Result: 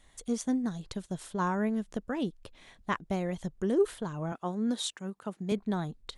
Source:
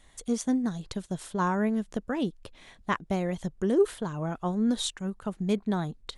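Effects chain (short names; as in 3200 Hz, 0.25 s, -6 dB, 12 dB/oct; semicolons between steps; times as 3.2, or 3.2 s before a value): 4.32–5.52 HPF 190 Hz 12 dB/oct; gain -3 dB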